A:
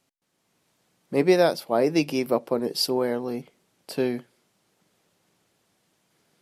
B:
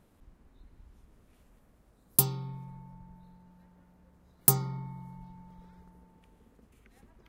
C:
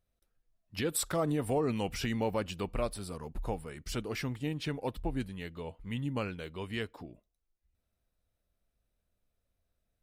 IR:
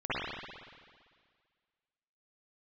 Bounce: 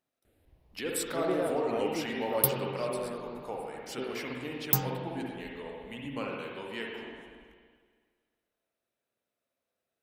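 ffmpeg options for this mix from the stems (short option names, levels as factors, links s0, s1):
-filter_complex "[0:a]lowpass=2200,volume=0.2[s0];[1:a]asplit=2[s1][s2];[s2]afreqshift=0.53[s3];[s1][s3]amix=inputs=2:normalize=1,adelay=250,volume=0.794,asplit=2[s4][s5];[s5]volume=0.15[s6];[2:a]highpass=300,volume=0.631,asplit=2[s7][s8];[s8]volume=0.501[s9];[3:a]atrim=start_sample=2205[s10];[s6][s9]amix=inputs=2:normalize=0[s11];[s11][s10]afir=irnorm=-1:irlink=0[s12];[s0][s4][s7][s12]amix=inputs=4:normalize=0"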